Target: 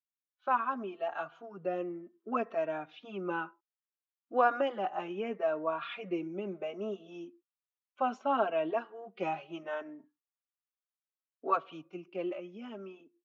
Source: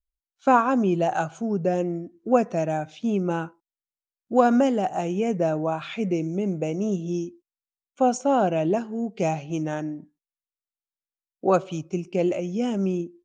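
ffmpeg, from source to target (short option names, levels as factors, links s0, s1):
-filter_complex "[0:a]highpass=480,equalizer=f=500:t=q:w=4:g=-6,equalizer=f=770:t=q:w=4:g=-5,equalizer=f=1200:t=q:w=4:g=5,equalizer=f=2200:t=q:w=4:g=-4,lowpass=f=3300:w=0.5412,lowpass=f=3300:w=1.3066,dynaudnorm=f=150:g=21:m=2,asplit=2[s0][s1];[s1]adelay=3.7,afreqshift=0.67[s2];[s0][s2]amix=inputs=2:normalize=1,volume=0.501"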